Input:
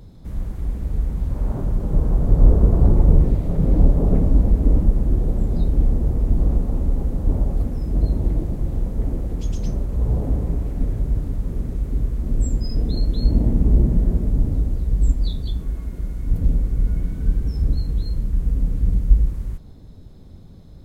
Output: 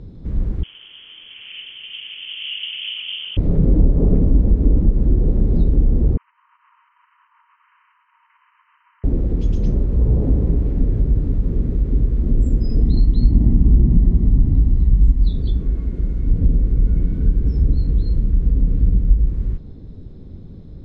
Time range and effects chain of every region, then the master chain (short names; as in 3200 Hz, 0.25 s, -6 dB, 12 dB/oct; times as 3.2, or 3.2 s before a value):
0.63–3.37 HPF 270 Hz + inverted band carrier 3300 Hz
6.17–9.04 compressor, threshold -18 dBFS + brick-wall FIR band-pass 910–3100 Hz
12.81–15.29 notch 920 Hz, Q 15 + comb 1 ms, depth 62%
whole clip: LPF 3900 Hz 12 dB/oct; resonant low shelf 540 Hz +6 dB, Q 1.5; compressor 2.5:1, threshold -11 dBFS